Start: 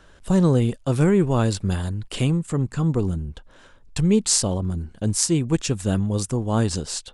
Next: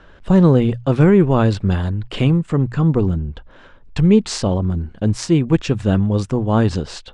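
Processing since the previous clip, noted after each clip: LPF 3100 Hz 12 dB/oct; notches 60/120 Hz; gain +6 dB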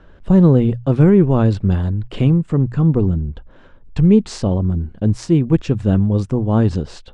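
tilt shelf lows +4.5 dB, about 670 Hz; gain -2.5 dB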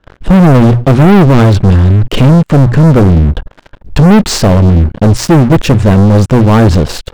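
sample leveller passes 5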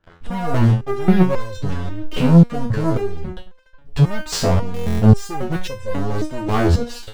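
stuck buffer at 4.72, samples 1024, times 11; stepped resonator 3.7 Hz 84–520 Hz

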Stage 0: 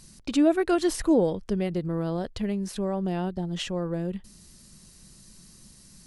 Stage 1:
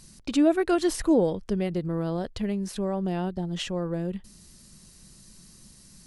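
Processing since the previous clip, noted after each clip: nothing audible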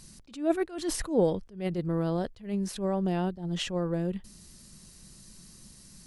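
attack slew limiter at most 150 dB/s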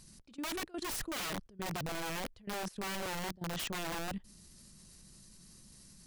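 wrapped overs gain 27 dB; level quantiser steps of 19 dB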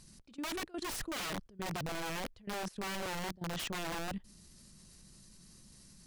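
high shelf 11000 Hz -5.5 dB

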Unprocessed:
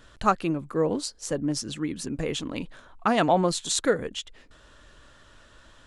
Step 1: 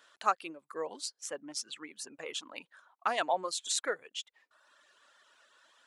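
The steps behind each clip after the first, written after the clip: HPF 680 Hz 12 dB/oct; reverb removal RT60 0.99 s; gain -5 dB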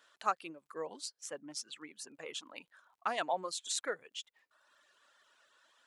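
dynamic EQ 150 Hz, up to +6 dB, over -58 dBFS, Q 1.2; crackle 24/s -60 dBFS; gain -4 dB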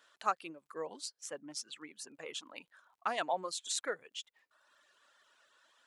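nothing audible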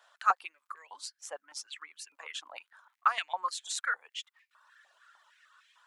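stepped high-pass 6.6 Hz 740–2300 Hz

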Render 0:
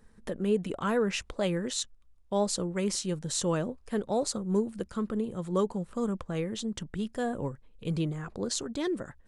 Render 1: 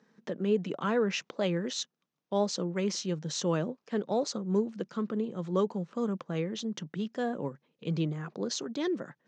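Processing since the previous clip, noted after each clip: Chebyshev band-pass 150–6300 Hz, order 4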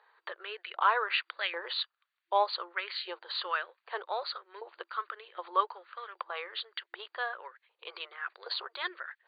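LFO high-pass saw up 1.3 Hz 860–1900 Hz; added harmonics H 3 -29 dB, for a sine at -16 dBFS; FFT band-pass 340–4700 Hz; gain +4 dB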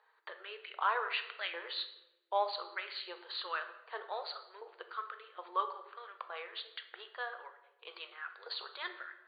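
shoebox room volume 390 m³, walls mixed, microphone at 0.56 m; gain -6 dB

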